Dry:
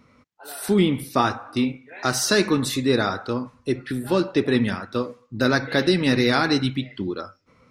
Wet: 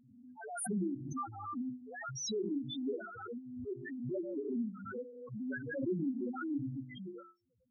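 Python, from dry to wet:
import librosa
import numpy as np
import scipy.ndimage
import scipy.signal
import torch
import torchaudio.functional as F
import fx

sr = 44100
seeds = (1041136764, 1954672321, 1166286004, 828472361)

y = fx.spec_topn(x, sr, count=1)
y = fx.hum_notches(y, sr, base_hz=50, count=8)
y = fx.pre_swell(y, sr, db_per_s=43.0)
y = y * 10.0 ** (-8.5 / 20.0)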